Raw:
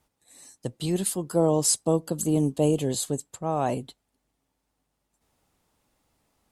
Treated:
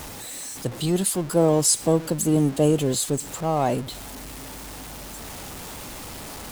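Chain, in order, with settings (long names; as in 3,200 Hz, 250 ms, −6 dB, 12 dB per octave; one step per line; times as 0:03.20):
converter with a step at zero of −33.5 dBFS
level +2.5 dB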